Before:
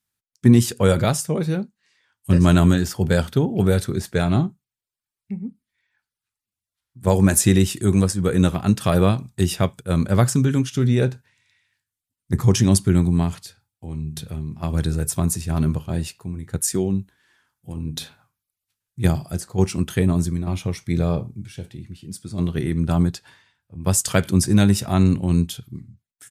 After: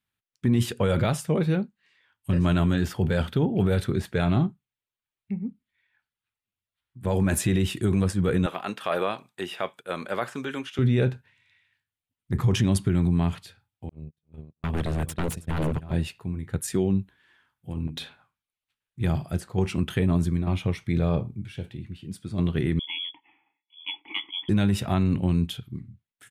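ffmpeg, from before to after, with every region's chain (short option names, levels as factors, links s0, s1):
-filter_complex "[0:a]asettb=1/sr,asplit=3[s0][s1][s2];[s0]atrim=end=8.464[s3];[s1]atrim=start=8.46:end=10.79,asetpts=PTS-STARTPTS,afade=t=in:d=0.004:c=qsin,afade=t=out:st=2.326:d=0.004:c=qsin,highpass=530,acrossover=split=2700[s4][s5];[s5]acompressor=threshold=0.0158:ratio=4:attack=1:release=60[s6];[s4][s6]amix=inputs=2:normalize=0[s7];[s2]atrim=start=10.786[s8];[s3][s7]acrossfade=d=0.004:c1=hsin:c2=qsin[s9];[s9][s8]acrossfade=d=0.004:c1=qsin:c2=hsin,asettb=1/sr,asplit=3[s10][s11][s12];[s10]atrim=end=13.894[s13];[s11]atrim=start=13.89:end=15.93,asetpts=PTS-STARTPTS,afade=t=in:d=0.004:c=qsin,afade=t=out:st=2.036:d=0.004:c=qsin,agate=range=0.002:threshold=0.0501:ratio=16:release=100:detection=peak,aecho=1:1:323|646:0.126|0.0277,atrim=end_sample=89964,aeval=exprs='0.112*(abs(mod(val(0)/0.112+3,4)-2)-1)':c=same[s14];[s12]atrim=start=15.926[s15];[s13][s14]acrossfade=d=0.004:c1=hsin:c2=qsin[s16];[s16][s15]acrossfade=d=0.004:c1=qsin:c2=hsin,asettb=1/sr,asplit=3[s17][s18][s19];[s17]atrim=end=17.874[s20];[s18]atrim=start=17.87:end=19.01,asetpts=PTS-STARTPTS,afade=t=in:d=0.004:c=qsin,afade=t=out:st=1.136:d=0.004:c=qsin,lowpass=11000,equalizer=f=110:t=o:w=1.5:g=-8,volume=16.8,asoftclip=hard,volume=0.0596[s21];[s19]atrim=start=19.006[s22];[s20][s21]acrossfade=d=0.004:c1=hsin:c2=qsin[s23];[s23][s22]acrossfade=d=0.004:c1=qsin:c2=hsin,asettb=1/sr,asplit=3[s24][s25][s26];[s24]atrim=end=22.794[s27];[s25]atrim=start=22.79:end=24.49,asetpts=PTS-STARTPTS,afade=t=in:d=0.004:c=qsin,afade=t=out:st=1.696:d=0.004:c=qsin,lowpass=f=3000:t=q:w=0.5098,lowpass=f=3000:t=q:w=0.6013,lowpass=f=3000:t=q:w=0.9,lowpass=f=3000:t=q:w=2.563,afreqshift=-3500,acontrast=76,asplit=3[s28][s29][s30];[s28]bandpass=f=300:t=q:w=8,volume=1[s31];[s29]bandpass=f=870:t=q:w=8,volume=0.501[s32];[s30]bandpass=f=2240:t=q:w=8,volume=0.355[s33];[s31][s32][s33]amix=inputs=3:normalize=0[s34];[s26]atrim=start=24.486[s35];[s27][s34]acrossfade=d=0.004:c1=hsin:c2=qsin[s36];[s36][s35]acrossfade=d=0.004:c1=qsin:c2=hsin,highshelf=f=4200:t=q:w=1.5:g=-8.5,alimiter=limit=0.224:level=0:latency=1:release=17,volume=0.891"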